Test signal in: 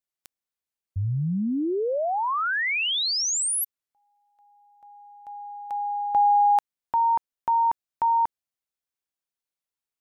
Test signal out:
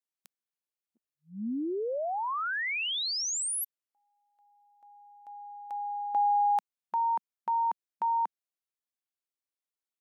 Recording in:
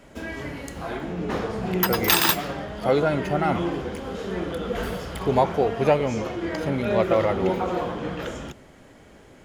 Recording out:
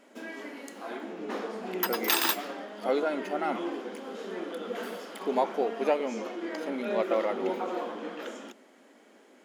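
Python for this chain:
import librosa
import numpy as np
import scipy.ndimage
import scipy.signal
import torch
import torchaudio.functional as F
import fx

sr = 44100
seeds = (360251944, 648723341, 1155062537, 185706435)

y = fx.brickwall_highpass(x, sr, low_hz=200.0)
y = F.gain(torch.from_numpy(y), -6.5).numpy()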